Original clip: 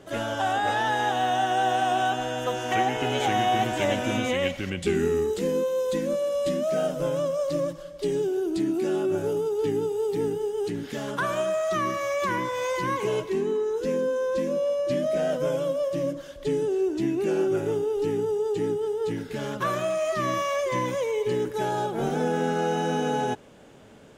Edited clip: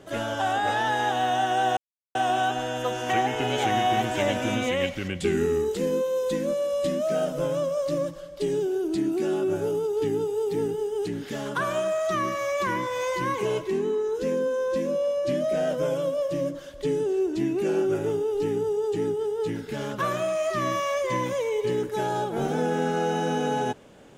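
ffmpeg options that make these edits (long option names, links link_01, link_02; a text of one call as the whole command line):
ffmpeg -i in.wav -filter_complex "[0:a]asplit=2[link_01][link_02];[link_01]atrim=end=1.77,asetpts=PTS-STARTPTS,afade=type=out:start_time=1.766:duration=0.004:curve=hsin,apad=pad_dur=0.38[link_03];[link_02]atrim=start=1.77,asetpts=PTS-STARTPTS,afade=type=in:duration=0.004:curve=hsin[link_04];[link_03][link_04]concat=n=2:v=0:a=1" out.wav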